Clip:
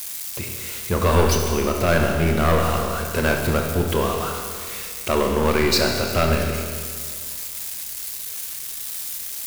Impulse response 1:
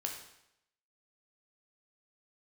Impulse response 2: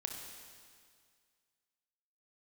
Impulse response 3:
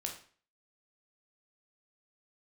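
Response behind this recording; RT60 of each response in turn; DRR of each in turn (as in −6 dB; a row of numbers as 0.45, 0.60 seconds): 2; 0.80, 2.0, 0.45 seconds; 1.0, 2.0, 1.5 decibels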